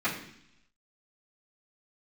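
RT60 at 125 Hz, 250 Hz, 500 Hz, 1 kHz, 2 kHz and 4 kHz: 0.95 s, 0.90 s, 0.65 s, 0.70 s, 0.90 s, 1.0 s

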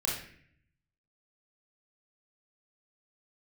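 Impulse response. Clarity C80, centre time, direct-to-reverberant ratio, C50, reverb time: 7.0 dB, 47 ms, -4.0 dB, 2.5 dB, 0.60 s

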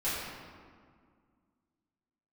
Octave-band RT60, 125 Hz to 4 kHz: 2.3 s, 2.6 s, 2.0 s, 1.9 s, 1.5 s, 1.1 s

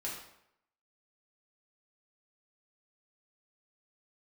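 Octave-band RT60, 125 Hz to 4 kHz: 0.70 s, 0.70 s, 0.75 s, 0.75 s, 0.70 s, 0.60 s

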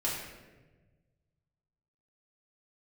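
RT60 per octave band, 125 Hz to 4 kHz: 2.3 s, 1.7 s, 1.5 s, 1.0 s, 1.1 s, 0.80 s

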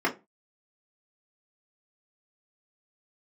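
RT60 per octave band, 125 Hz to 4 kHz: 0.35 s, 0.30 s, 0.25 s, 0.25 s, 0.20 s, 0.15 s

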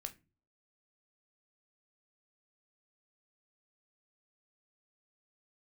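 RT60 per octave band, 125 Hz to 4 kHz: 0.55 s, 0.50 s, 0.40 s, 0.25 s, 0.25 s, 0.20 s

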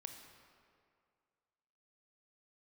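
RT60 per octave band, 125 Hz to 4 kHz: 2.0 s, 2.1 s, 2.2 s, 2.2 s, 1.9 s, 1.4 s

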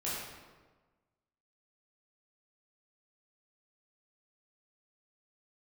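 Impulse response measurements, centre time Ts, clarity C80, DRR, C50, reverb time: 89 ms, 1.5 dB, -9.0 dB, -1.0 dB, 1.3 s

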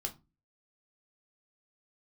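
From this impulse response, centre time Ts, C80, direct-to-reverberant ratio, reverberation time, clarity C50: 8 ms, 24.0 dB, 3.0 dB, 0.25 s, 17.0 dB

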